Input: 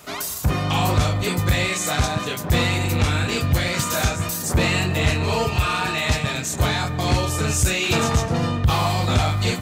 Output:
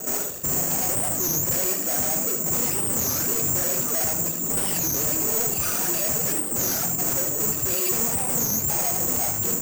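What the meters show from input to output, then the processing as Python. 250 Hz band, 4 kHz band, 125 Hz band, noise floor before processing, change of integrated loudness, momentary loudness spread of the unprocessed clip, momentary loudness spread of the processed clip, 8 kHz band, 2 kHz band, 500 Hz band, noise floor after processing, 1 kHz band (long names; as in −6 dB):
−7.0 dB, −10.5 dB, −14.5 dB, −29 dBFS, 0.0 dB, 3 LU, 2 LU, +6.5 dB, −12.0 dB, −5.5 dB, −28 dBFS, −9.5 dB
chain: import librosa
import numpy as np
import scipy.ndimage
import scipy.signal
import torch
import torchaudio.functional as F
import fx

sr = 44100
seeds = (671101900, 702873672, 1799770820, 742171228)

p1 = scipy.signal.medfilt(x, 41)
p2 = fx.dereverb_blind(p1, sr, rt60_s=1.6)
p3 = scipy.signal.sosfilt(scipy.signal.butter(2, 230.0, 'highpass', fs=sr, output='sos'), p2)
p4 = fx.rider(p3, sr, range_db=4, speed_s=0.5)
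p5 = p3 + (p4 * librosa.db_to_amplitude(1.0))
p6 = fx.fold_sine(p5, sr, drive_db=10, ceiling_db=-7.0)
p7 = fx.vibrato(p6, sr, rate_hz=7.6, depth_cents=71.0)
p8 = 10.0 ** (-24.5 / 20.0) * np.tanh(p7 / 10.0 ** (-24.5 / 20.0))
p9 = p8 + fx.echo_single(p8, sr, ms=76, db=-6.5, dry=0)
p10 = (np.kron(scipy.signal.resample_poly(p9, 1, 6), np.eye(6)[0]) * 6)[:len(p9)]
p11 = fx.record_warp(p10, sr, rpm=33.33, depth_cents=250.0)
y = p11 * librosa.db_to_amplitude(-6.5)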